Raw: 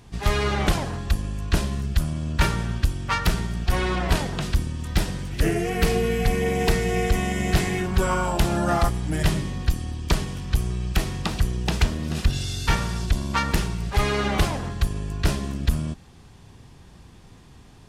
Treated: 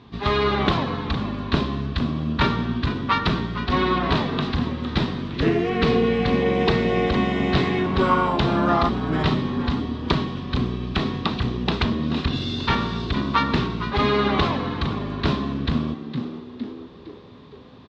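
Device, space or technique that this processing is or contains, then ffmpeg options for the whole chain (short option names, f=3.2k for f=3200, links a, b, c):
frequency-shifting delay pedal into a guitar cabinet: -filter_complex "[0:a]asplit=6[a][b][c][d][e][f];[b]adelay=460,afreqshift=88,volume=-11.5dB[g];[c]adelay=920,afreqshift=176,volume=-18.2dB[h];[d]adelay=1380,afreqshift=264,volume=-25dB[i];[e]adelay=1840,afreqshift=352,volume=-31.7dB[j];[f]adelay=2300,afreqshift=440,volume=-38.5dB[k];[a][g][h][i][j][k]amix=inputs=6:normalize=0,highpass=79,equalizer=f=250:t=q:w=4:g=10,equalizer=f=400:t=q:w=4:g=5,equalizer=f=1.1k:t=q:w=4:g=9,equalizer=f=3.8k:t=q:w=4:g=8,lowpass=f=4.2k:w=0.5412,lowpass=f=4.2k:w=1.3066"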